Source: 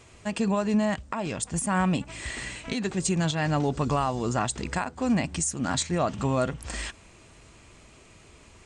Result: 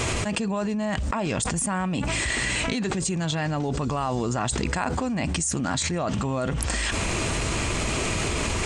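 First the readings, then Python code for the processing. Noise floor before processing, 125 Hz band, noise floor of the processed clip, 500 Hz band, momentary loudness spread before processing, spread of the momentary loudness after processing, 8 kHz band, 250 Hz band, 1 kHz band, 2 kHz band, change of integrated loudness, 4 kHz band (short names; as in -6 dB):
-53 dBFS, +2.5 dB, -28 dBFS, +1.0 dB, 9 LU, 2 LU, +4.5 dB, +0.5 dB, +1.0 dB, +6.0 dB, +1.5 dB, +6.5 dB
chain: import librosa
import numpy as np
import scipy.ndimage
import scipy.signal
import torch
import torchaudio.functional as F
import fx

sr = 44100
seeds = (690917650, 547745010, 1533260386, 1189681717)

y = fx.env_flatten(x, sr, amount_pct=100)
y = y * 10.0 ** (-6.0 / 20.0)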